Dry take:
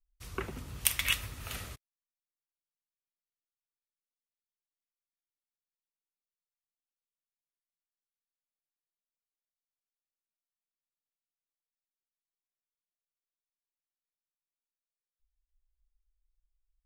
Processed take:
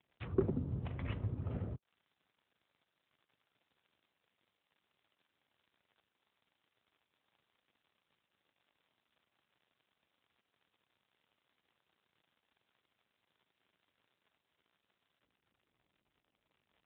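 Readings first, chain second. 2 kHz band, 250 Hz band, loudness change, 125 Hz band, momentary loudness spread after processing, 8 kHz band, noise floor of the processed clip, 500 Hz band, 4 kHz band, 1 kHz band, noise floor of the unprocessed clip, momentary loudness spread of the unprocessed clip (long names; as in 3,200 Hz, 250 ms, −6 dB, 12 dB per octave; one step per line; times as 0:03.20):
−19.0 dB, +8.5 dB, −6.0 dB, +6.5 dB, 8 LU, below −35 dB, below −85 dBFS, +7.0 dB, −25.0 dB, −7.5 dB, below −85 dBFS, 14 LU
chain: surface crackle 69 per second −63 dBFS
treble cut that deepens with the level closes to 480 Hz, closed at −41.5 dBFS
level +9 dB
AMR narrowband 12.2 kbit/s 8,000 Hz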